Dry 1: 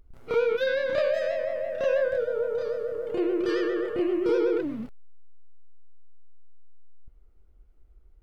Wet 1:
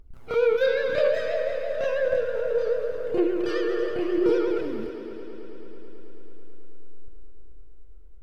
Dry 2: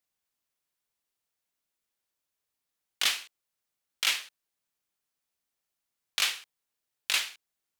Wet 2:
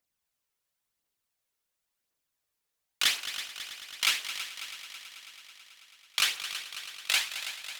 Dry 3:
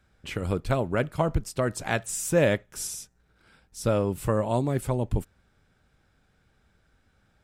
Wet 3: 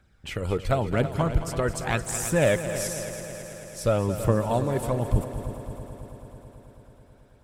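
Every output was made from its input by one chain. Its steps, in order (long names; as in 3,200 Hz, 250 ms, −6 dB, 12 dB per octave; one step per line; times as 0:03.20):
phase shifter 0.94 Hz, delay 2.4 ms, feedback 41%
echo machine with several playback heads 109 ms, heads second and third, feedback 68%, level −12 dB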